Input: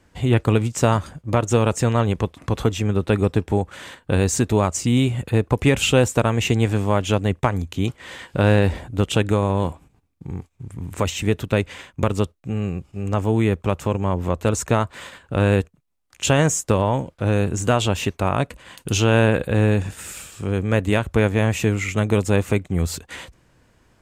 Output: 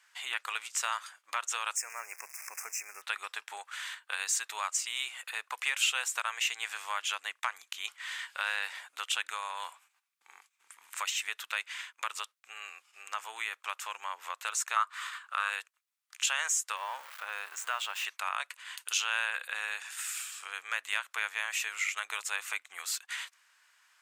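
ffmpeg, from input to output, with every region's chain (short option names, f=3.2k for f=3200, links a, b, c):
-filter_complex "[0:a]asettb=1/sr,asplit=3[a][b][c];[a]atrim=end=1.764[d];[b]atrim=start=1.76:end=3.02,asetpts=PTS-STARTPTS,afade=t=in:d=0.004:c=qsin,afade=t=out:st=1.256:d=0.004:c=qsin,aeval=exprs='val(0)+0.5*0.0282*sgn(val(0))':c=same,asuperstop=centerf=3600:order=12:qfactor=1.4,equalizer=f=1.2k:w=0.96:g=-12[e];[c]atrim=start=3.016[f];[d][e]acrossfade=d=0.004:c1=hsin:c2=qsin[g];[g][f]acrossfade=d=0.004:c1=qsin:c2=hsin,asettb=1/sr,asplit=3[h][i][j];[h]atrim=end=14.764[k];[i]atrim=start=14.76:end=15.5,asetpts=PTS-STARTPTS,afade=t=in:d=0.004:c=qsin,afade=t=out:st=0.736:d=0.004:c=qsin,highpass=f=430:w=0.5412,highpass=f=430:w=1.3066,equalizer=f=1.2k:t=o:w=0.42:g=12[l];[j]atrim=start=15.496[m];[k][l]acrossfade=d=0.004:c1=hsin:c2=qsin[n];[n][m]acrossfade=d=0.004:c1=qsin:c2=hsin,asettb=1/sr,asplit=3[o][p][q];[o]atrim=end=16.764[r];[p]atrim=start=16.76:end=18.05,asetpts=PTS-STARTPTS,afade=t=in:d=0.004:c=qsin,afade=t=out:st=1.286:d=0.004:c=qsin,aeval=exprs='val(0)+0.5*0.0282*sgn(val(0))':c=same,equalizer=f=6.8k:w=0.37:g=-10.5[s];[q]atrim=start=18.046[t];[r][s]acrossfade=d=0.004:c1=hsin:c2=qsin[u];[u][t]acrossfade=d=0.004:c1=qsin:c2=hsin,highpass=f=1.2k:w=0.5412,highpass=f=1.2k:w=1.3066,acompressor=threshold=-36dB:ratio=1.5"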